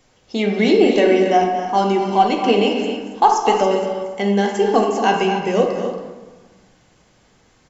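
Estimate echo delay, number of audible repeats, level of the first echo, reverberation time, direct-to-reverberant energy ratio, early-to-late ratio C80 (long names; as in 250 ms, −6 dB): 231 ms, 2, −10.0 dB, 1.3 s, 0.0 dB, 4.0 dB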